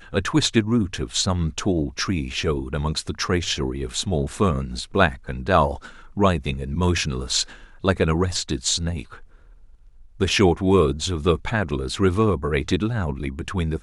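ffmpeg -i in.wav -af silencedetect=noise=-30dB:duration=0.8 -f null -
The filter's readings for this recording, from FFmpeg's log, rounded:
silence_start: 9.14
silence_end: 10.20 | silence_duration: 1.06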